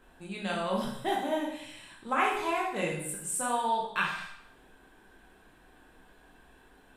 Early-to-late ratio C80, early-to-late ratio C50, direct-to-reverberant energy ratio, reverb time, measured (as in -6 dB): 7.0 dB, 3.0 dB, -3.5 dB, 0.75 s